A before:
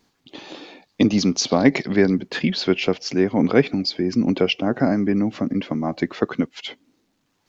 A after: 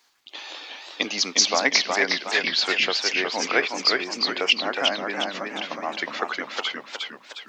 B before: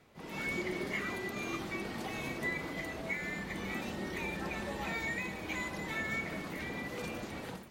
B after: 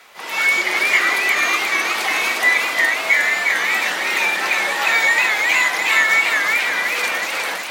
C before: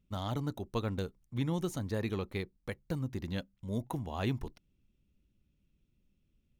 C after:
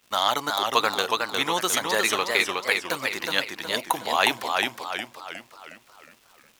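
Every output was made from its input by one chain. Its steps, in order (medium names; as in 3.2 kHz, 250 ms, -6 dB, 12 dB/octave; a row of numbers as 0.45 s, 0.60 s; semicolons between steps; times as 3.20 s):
high-pass 970 Hz 12 dB/octave; crackle 270 per s -65 dBFS; modulated delay 362 ms, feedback 46%, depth 138 cents, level -3.5 dB; peak normalisation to -3 dBFS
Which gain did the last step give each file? +4.5 dB, +22.0 dB, +21.5 dB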